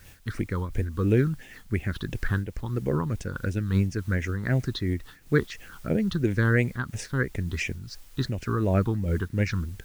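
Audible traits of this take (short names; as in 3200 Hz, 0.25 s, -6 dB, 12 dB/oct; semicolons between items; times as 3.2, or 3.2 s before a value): phasing stages 6, 2.9 Hz, lowest notch 600–1200 Hz; a quantiser's noise floor 10-bit, dither triangular; noise-modulated level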